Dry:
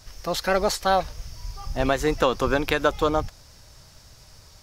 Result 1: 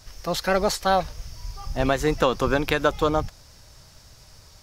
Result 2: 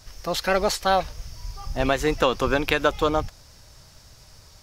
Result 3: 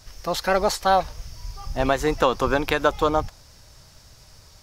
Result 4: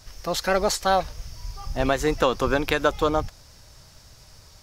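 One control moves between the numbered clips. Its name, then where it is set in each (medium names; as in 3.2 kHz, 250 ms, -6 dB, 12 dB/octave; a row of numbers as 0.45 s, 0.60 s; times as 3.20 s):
dynamic bell, frequency: 160 Hz, 2.7 kHz, 900 Hz, 7.2 kHz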